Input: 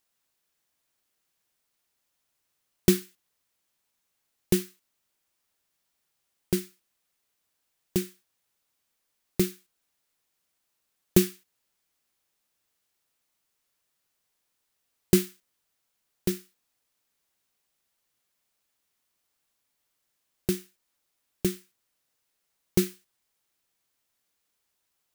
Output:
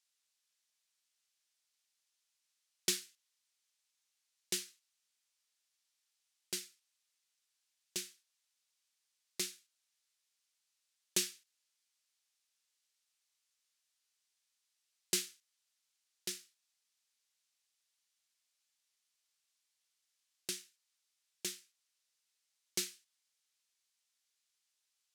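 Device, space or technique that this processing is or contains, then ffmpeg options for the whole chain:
piezo pickup straight into a mixer: -af "lowpass=5.8k,aderivative,volume=4.5dB"

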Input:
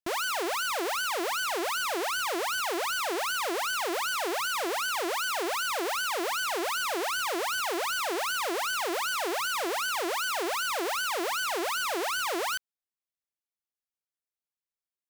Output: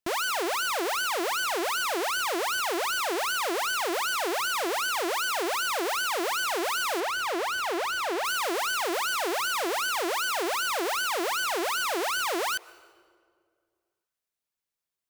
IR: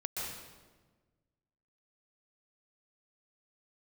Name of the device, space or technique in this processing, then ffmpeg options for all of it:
ducked reverb: -filter_complex "[0:a]asplit=3[a][b][c];[1:a]atrim=start_sample=2205[d];[b][d]afir=irnorm=-1:irlink=0[e];[c]apad=whole_len=665541[f];[e][f]sidechaincompress=threshold=-48dB:ratio=12:attack=16:release=1050,volume=-4.5dB[g];[a][g]amix=inputs=2:normalize=0,asettb=1/sr,asplit=3[h][i][j];[h]atrim=end=7.004[k];[i]atrim=start=7:end=8.25,asetpts=PTS-STARTPTS,afade=t=in:d=0.004:c=qsin,afade=t=out:st=1.246:d=0.004:c=qsin,highshelf=f=5.1k:g=-8[l];[j]atrim=start=8.246[m];[k][l]acrossfade=d=0.004:c1=hsin:c2=qsin[n];[n][m]acrossfade=d=0.004:c1=qsin:c2=hsin,volume=1.5dB"

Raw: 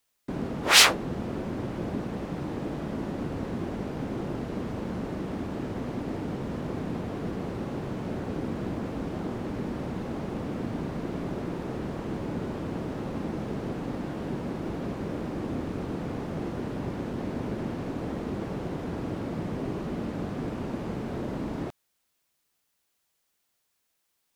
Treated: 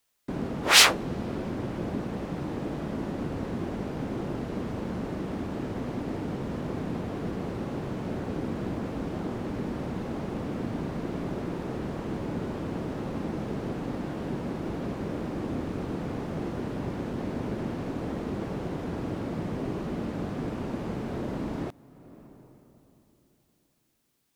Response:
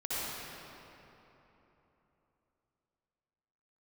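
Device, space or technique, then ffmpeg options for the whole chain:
ducked reverb: -filter_complex "[0:a]asplit=3[a][b][c];[1:a]atrim=start_sample=2205[d];[b][d]afir=irnorm=-1:irlink=0[e];[c]apad=whole_len=1074174[f];[e][f]sidechaincompress=threshold=-47dB:ratio=5:attack=16:release=439,volume=-16.5dB[g];[a][g]amix=inputs=2:normalize=0"

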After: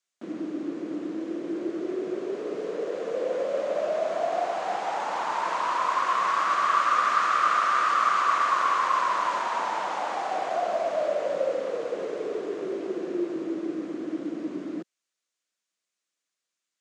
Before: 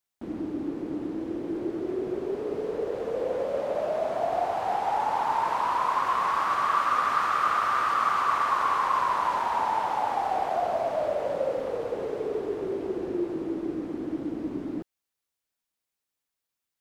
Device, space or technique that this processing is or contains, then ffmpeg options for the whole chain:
television speaker: -af "highpass=f=200:w=0.5412,highpass=f=200:w=1.3066,equalizer=f=250:t=q:w=4:g=-8,equalizer=f=420:t=q:w=4:g=-5,equalizer=f=850:t=q:w=4:g=-10,equalizer=f=6.7k:t=q:w=4:g=4,lowpass=f=8.5k:w=0.5412,lowpass=f=8.5k:w=1.3066,volume=3.5dB"

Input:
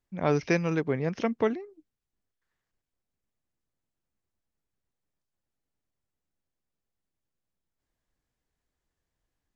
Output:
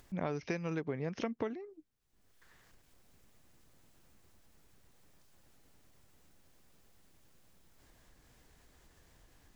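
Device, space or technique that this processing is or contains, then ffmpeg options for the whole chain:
upward and downward compression: -af "acompressor=mode=upward:threshold=-45dB:ratio=2.5,acompressor=threshold=-33dB:ratio=8"

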